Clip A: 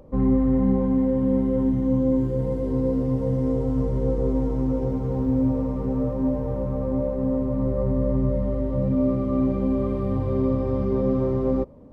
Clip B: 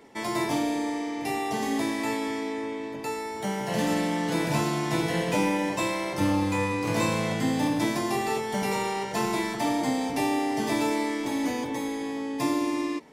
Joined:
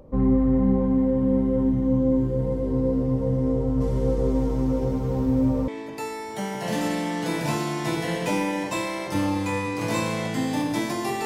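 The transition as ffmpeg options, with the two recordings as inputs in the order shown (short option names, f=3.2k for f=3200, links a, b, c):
-filter_complex "[0:a]asplit=3[a][b][c];[a]afade=t=out:st=3.8:d=0.02[d];[b]highshelf=f=2.1k:g=12,afade=t=in:st=3.8:d=0.02,afade=t=out:st=5.68:d=0.02[e];[c]afade=t=in:st=5.68:d=0.02[f];[d][e][f]amix=inputs=3:normalize=0,apad=whole_dur=11.25,atrim=end=11.25,atrim=end=5.682[g];[1:a]atrim=start=2.738:end=8.31[h];[g][h]acrossfade=d=0.004:c1=hsin:c2=hsin"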